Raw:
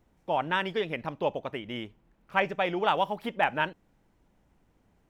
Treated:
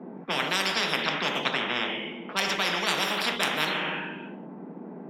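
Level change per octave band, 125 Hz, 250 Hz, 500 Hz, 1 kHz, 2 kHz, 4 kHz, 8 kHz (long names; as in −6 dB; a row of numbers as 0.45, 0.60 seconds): +0.5 dB, +2.5 dB, −2.5 dB, −1.5 dB, +5.5 dB, +12.0 dB, can't be measured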